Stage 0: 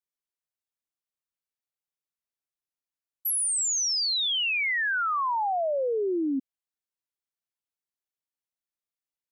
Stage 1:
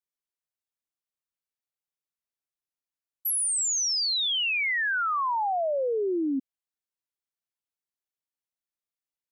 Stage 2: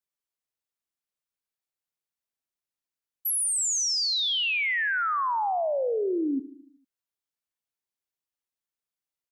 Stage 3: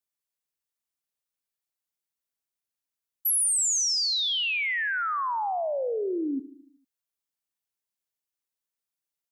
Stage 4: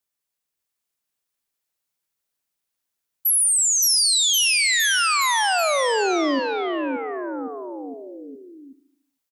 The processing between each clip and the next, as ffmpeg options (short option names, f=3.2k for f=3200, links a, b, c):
-af anull
-af "aecho=1:1:75|150|225|300|375|450:0.168|0.099|0.0584|0.0345|0.0203|0.012"
-af "highshelf=f=5.4k:g=5.5,volume=-2dB"
-af "aecho=1:1:570|1083|1545|1960|2334:0.631|0.398|0.251|0.158|0.1,volume=5.5dB"